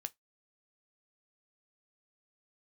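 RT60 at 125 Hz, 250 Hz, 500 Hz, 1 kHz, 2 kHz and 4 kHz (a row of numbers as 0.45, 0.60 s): 0.15, 0.15, 0.15, 0.15, 0.15, 0.15 s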